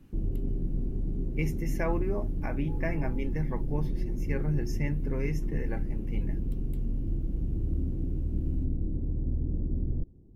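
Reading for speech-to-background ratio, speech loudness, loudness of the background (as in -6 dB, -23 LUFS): -1.5 dB, -35.5 LUFS, -34.0 LUFS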